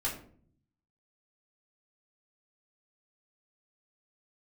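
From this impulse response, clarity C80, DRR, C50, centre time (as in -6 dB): 12.0 dB, -6.5 dB, 7.5 dB, 26 ms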